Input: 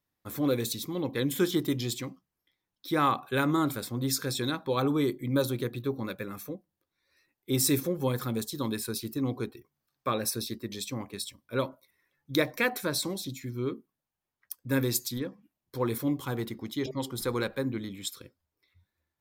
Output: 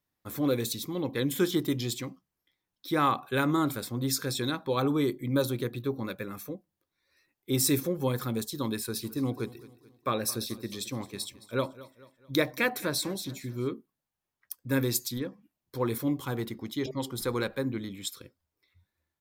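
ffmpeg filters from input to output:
ffmpeg -i in.wav -filter_complex "[0:a]asplit=3[link_01][link_02][link_03];[link_01]afade=type=out:start_time=8.88:duration=0.02[link_04];[link_02]aecho=1:1:218|436|654|872:0.119|0.0535|0.0241|0.0108,afade=type=in:start_time=8.88:duration=0.02,afade=type=out:start_time=13.67:duration=0.02[link_05];[link_03]afade=type=in:start_time=13.67:duration=0.02[link_06];[link_04][link_05][link_06]amix=inputs=3:normalize=0" out.wav

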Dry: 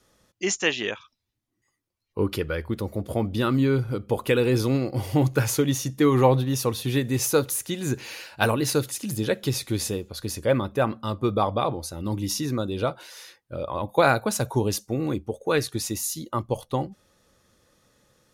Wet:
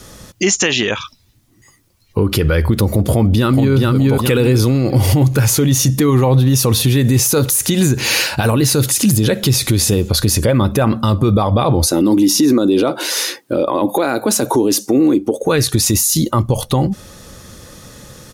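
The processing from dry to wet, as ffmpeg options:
ffmpeg -i in.wav -filter_complex "[0:a]asplit=2[link_01][link_02];[link_02]afade=type=in:start_time=3.11:duration=0.01,afade=type=out:start_time=3.75:duration=0.01,aecho=0:1:420|840|1260|1680:0.794328|0.198582|0.0496455|0.0124114[link_03];[link_01][link_03]amix=inputs=2:normalize=0,asettb=1/sr,asplit=3[link_04][link_05][link_06];[link_04]atrim=end=11.864[link_07];[link_05]atrim=start=11.86:end=15.43,asetpts=PTS-STARTPTS,afade=type=in:duration=0.004:curve=qsin,afade=type=out:start_time=3.566:duration=0.004:curve=qsin,highpass=frequency=300:width_type=q:width=2.9[link_08];[link_06]atrim=start=15.426[link_09];[link_07][link_08]acrossfade=duration=0.004:curve1=hsin:curve2=qsin[link_10];[link_10][link_09]acrossfade=duration=0.004:curve1=qsin:curve2=hsin,bass=frequency=250:gain=6,treble=frequency=4000:gain=4,acompressor=threshold=-26dB:ratio=6,alimiter=level_in=27dB:limit=-1dB:release=50:level=0:latency=1,volume=-4.5dB" out.wav

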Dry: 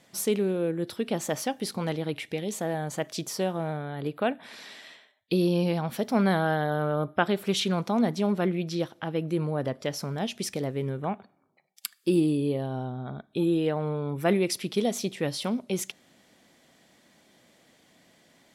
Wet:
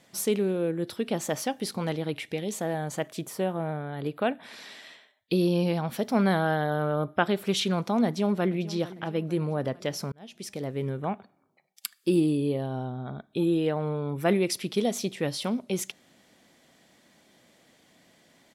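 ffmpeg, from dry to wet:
ffmpeg -i in.wav -filter_complex "[0:a]asettb=1/sr,asplit=3[link_01][link_02][link_03];[link_01]atrim=end=3.084[link_04];[link_02]atrim=start=3.08:end=3.93,asetpts=PTS-STARTPTS,afade=type=in:duration=0.004:curve=qsin,afade=type=out:start_time=0.846:duration=0.004:curve=qsin,equalizer=frequency=5200:width_type=o:width=1:gain=-11.5[link_05];[link_03]atrim=start=3.926[link_06];[link_04][link_05]acrossfade=duration=0.004:curve1=hsin:curve2=qsin[link_07];[link_07][link_06]acrossfade=duration=0.004:curve1=qsin:curve2=hsin,asplit=2[link_08][link_09];[link_09]afade=type=in:start_time=8.06:duration=0.01,afade=type=out:start_time=8.66:duration=0.01,aecho=0:1:450|900|1350|1800|2250:0.141254|0.0776896|0.0427293|0.0235011|0.0129256[link_10];[link_08][link_10]amix=inputs=2:normalize=0,asplit=2[link_11][link_12];[link_11]atrim=end=10.12,asetpts=PTS-STARTPTS,afade=type=out:start_time=10.116:duration=0.004:curve=hsin[link_13];[link_12]atrim=start=10.12,asetpts=PTS-STARTPTS,afade=type=in:duration=0.72[link_14];[link_13][link_14]concat=n=2:v=0:a=1" out.wav

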